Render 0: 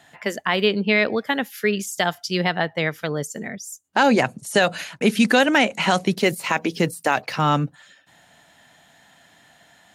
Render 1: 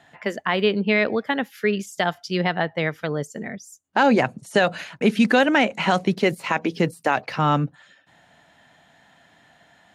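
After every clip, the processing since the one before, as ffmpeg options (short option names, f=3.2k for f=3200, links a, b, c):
-af "lowpass=f=2.7k:p=1"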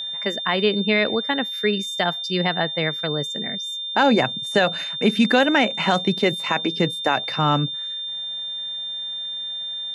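-af "aeval=exprs='val(0)+0.0447*sin(2*PI*3600*n/s)':c=same"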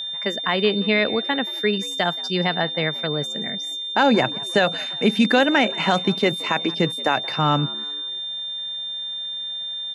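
-filter_complex "[0:a]asplit=4[a][b][c][d];[b]adelay=176,afreqshift=72,volume=-21dB[e];[c]adelay=352,afreqshift=144,volume=-27.6dB[f];[d]adelay=528,afreqshift=216,volume=-34.1dB[g];[a][e][f][g]amix=inputs=4:normalize=0"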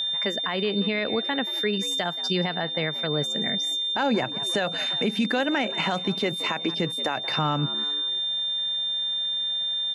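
-af "alimiter=limit=-17.5dB:level=0:latency=1:release=239,volume=2.5dB"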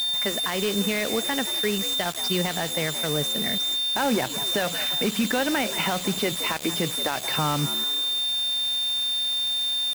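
-af "acrusher=bits=4:mix=0:aa=0.000001"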